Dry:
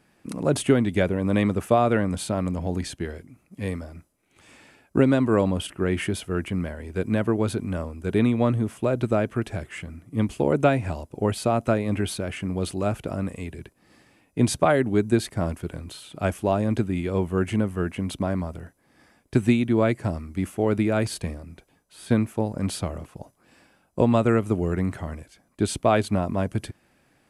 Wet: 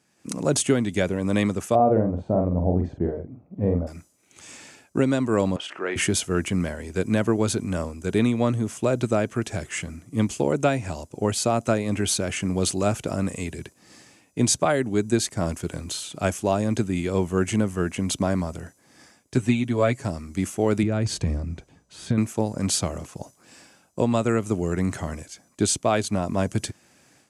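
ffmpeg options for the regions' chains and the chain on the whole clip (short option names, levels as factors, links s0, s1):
-filter_complex "[0:a]asettb=1/sr,asplit=3[s0][s1][s2];[s0]atrim=end=1.754[s3];[s1]atrim=start=1.75:end=3.87,asetpts=PTS-STARTPTS,afade=t=in:d=0.004:c=qsin,afade=t=out:st=2.116:d=0.004:c=qsin,lowpass=f=660:t=q:w=1.7,lowshelf=f=130:g=7.5,asplit=2[s4][s5];[s5]adelay=46,volume=0.562[s6];[s4][s6]amix=inputs=2:normalize=0,atrim=end_sample=93492[s7];[s2]atrim=start=3.866[s8];[s3][s7]acrossfade=d=0.004:c1=hsin:c2=qsin[s9];[s9][s8]acrossfade=d=0.004:c1=qsin:c2=hsin,asettb=1/sr,asplit=3[s10][s11][s12];[s10]atrim=end=5.564[s13];[s11]atrim=start=5.56:end=5.96,asetpts=PTS-STARTPTS,afade=t=in:d=0.004:c=qsin,afade=t=out:st=0.396:d=0.004:c=qsin,acompressor=mode=upward:threshold=0.0562:ratio=2.5:attack=3.2:release=140:knee=2.83:detection=peak,highpass=550,lowpass=2800,asplit=2[s14][s15];[s15]adelay=30,volume=0.2[s16];[s14][s16]amix=inputs=2:normalize=0,atrim=end_sample=17640[s17];[s12]atrim=start=5.956[s18];[s13][s17]acrossfade=d=0.004:c1=hsin:c2=qsin[s19];[s19][s18]acrossfade=d=0.004:c1=qsin:c2=hsin,asettb=1/sr,asplit=3[s20][s21][s22];[s20]atrim=end=19.364[s23];[s21]atrim=start=19.36:end=20.04,asetpts=PTS-STARTPTS,afade=t=in:d=0.004:c=qsin,afade=t=out:st=0.676:d=0.004:c=qsin,acrossover=split=4000[s24][s25];[s25]acompressor=threshold=0.00355:ratio=4:attack=1:release=60[s26];[s24][s26]amix=inputs=2:normalize=0,aecho=1:1:7.3:0.67,atrim=end_sample=29988[s27];[s22]atrim=start=20.036[s28];[s23][s27]acrossfade=d=0.004:c1=hsin:c2=qsin[s29];[s29][s28]acrossfade=d=0.004:c1=qsin:c2=hsin,asettb=1/sr,asplit=3[s30][s31][s32];[s30]atrim=end=20.834[s33];[s31]atrim=start=20.83:end=22.18,asetpts=PTS-STARTPTS,afade=t=in:d=0.004:c=qsin,afade=t=out:st=1.346:d=0.004:c=qsin,aemphasis=mode=reproduction:type=bsi,acompressor=threshold=0.0891:ratio=4:attack=3.2:release=140:knee=1:detection=peak[s34];[s32]atrim=start=22.176[s35];[s33][s34]acrossfade=d=0.004:c1=hsin:c2=qsin[s36];[s36][s35]acrossfade=d=0.004:c1=qsin:c2=hsin,highpass=81,equalizer=f=6600:t=o:w=1:g=14,dynaudnorm=f=160:g=3:m=3.55,volume=0.447"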